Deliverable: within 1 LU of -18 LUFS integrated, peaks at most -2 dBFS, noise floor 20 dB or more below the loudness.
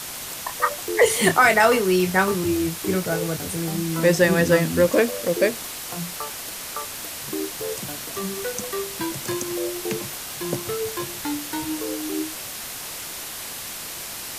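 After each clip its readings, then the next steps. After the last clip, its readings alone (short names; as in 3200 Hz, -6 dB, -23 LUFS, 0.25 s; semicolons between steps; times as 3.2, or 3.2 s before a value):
noise floor -34 dBFS; noise floor target -44 dBFS; loudness -23.5 LUFS; peak -4.0 dBFS; loudness target -18.0 LUFS
-> noise print and reduce 10 dB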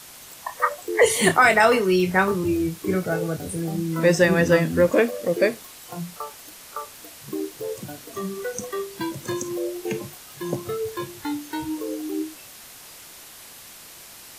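noise floor -44 dBFS; loudness -23.0 LUFS; peak -4.5 dBFS; loudness target -18.0 LUFS
-> gain +5 dB; limiter -2 dBFS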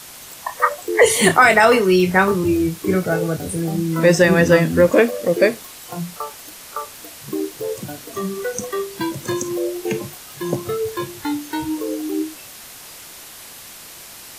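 loudness -18.0 LUFS; peak -2.0 dBFS; noise floor -39 dBFS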